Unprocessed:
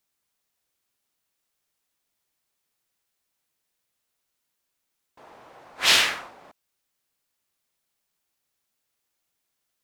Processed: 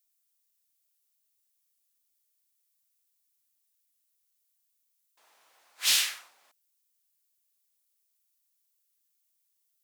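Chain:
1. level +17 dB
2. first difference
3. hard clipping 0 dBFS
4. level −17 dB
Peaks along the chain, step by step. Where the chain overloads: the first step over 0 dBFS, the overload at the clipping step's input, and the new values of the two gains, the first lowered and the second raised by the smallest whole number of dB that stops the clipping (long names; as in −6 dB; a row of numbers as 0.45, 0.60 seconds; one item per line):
+11.5, +7.5, 0.0, −17.0 dBFS
step 1, 7.5 dB
step 1 +9 dB, step 4 −9 dB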